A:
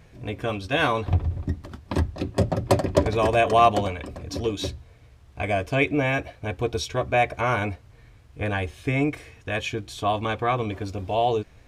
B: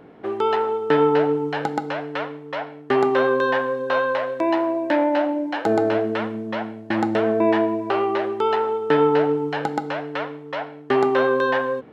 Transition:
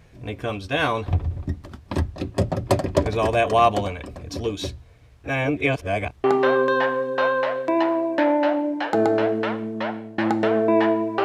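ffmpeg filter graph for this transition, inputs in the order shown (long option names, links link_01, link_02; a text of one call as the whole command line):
ffmpeg -i cue0.wav -i cue1.wav -filter_complex "[0:a]apad=whole_dur=11.24,atrim=end=11.24,asplit=2[link_01][link_02];[link_01]atrim=end=5.242[link_03];[link_02]atrim=start=5.238:end=6.242,asetpts=PTS-STARTPTS,areverse[link_04];[1:a]atrim=start=2.958:end=7.96[link_05];[link_03][link_04]acrossfade=duration=0.004:curve1=hsin:curve2=hsin[link_06];[link_06][link_05]acrossfade=duration=0.004:curve1=hsin:curve2=hsin" out.wav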